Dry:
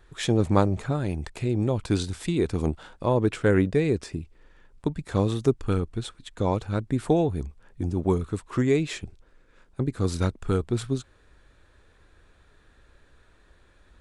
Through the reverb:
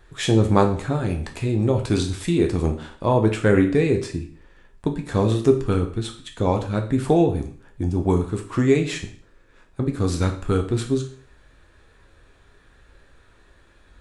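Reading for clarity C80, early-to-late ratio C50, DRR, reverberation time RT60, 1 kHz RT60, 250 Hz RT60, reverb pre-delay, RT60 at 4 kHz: 14.5 dB, 10.5 dB, 3.0 dB, 0.50 s, 0.50 s, 0.50 s, 7 ms, 0.45 s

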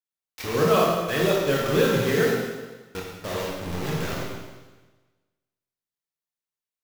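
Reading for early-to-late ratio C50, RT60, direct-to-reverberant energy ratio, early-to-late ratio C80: 0.0 dB, 1.3 s, -4.0 dB, 2.5 dB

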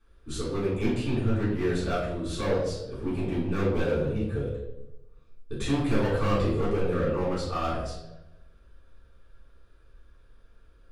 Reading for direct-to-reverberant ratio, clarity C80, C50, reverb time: -11.0 dB, 5.0 dB, 2.0 dB, 0.95 s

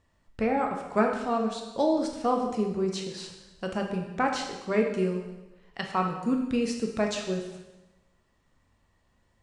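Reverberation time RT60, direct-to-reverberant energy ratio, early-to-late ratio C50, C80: 1.1 s, 1.5 dB, 5.0 dB, 7.5 dB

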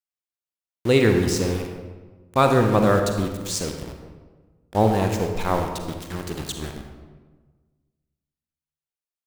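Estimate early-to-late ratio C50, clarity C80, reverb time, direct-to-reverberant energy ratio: 5.0 dB, 6.5 dB, 1.4 s, 4.0 dB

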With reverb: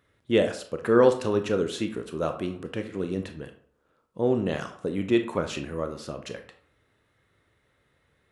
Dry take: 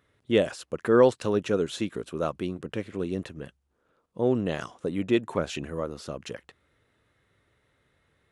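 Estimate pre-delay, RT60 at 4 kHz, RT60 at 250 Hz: 23 ms, 0.35 s, 0.45 s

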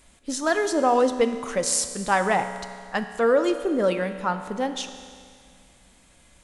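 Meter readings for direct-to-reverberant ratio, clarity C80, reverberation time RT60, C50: 8.5 dB, 10.5 dB, 2.1 s, 9.5 dB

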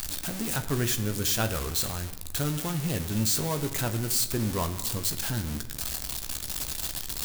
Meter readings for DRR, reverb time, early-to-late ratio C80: 7.0 dB, 1.3 s, 14.0 dB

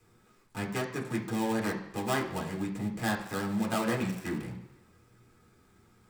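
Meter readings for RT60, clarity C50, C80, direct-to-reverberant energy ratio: 1.1 s, 8.0 dB, 11.0 dB, -1.5 dB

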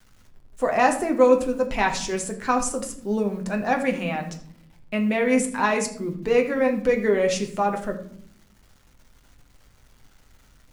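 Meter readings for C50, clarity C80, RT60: 10.5 dB, 13.5 dB, 0.60 s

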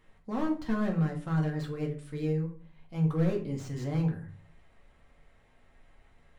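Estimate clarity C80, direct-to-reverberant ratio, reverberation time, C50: 14.5 dB, 0.0 dB, 0.45 s, 10.0 dB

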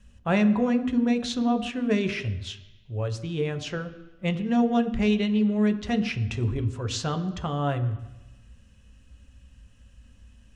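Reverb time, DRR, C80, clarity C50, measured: 1.0 s, 7.0 dB, 14.5 dB, 13.5 dB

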